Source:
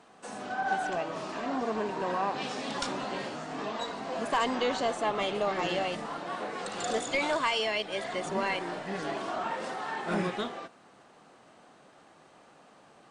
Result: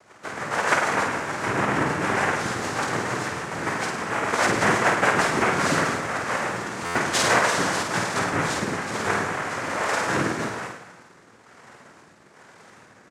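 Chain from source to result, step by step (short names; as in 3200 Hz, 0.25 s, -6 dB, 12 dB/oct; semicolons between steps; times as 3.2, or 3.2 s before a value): self-modulated delay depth 0.071 ms; HPF 480 Hz 6 dB/oct; high shelf 2200 Hz -11 dB; in parallel at -5 dB: companded quantiser 4-bit; on the sum: rotary speaker horn 6.7 Hz, later 1.1 Hz, at 5.01; noise vocoder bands 3; on a send: reverse bouncing-ball echo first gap 50 ms, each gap 1.1×, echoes 5; on the sum: stuck buffer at 6.85, samples 512, times 8; gain +9 dB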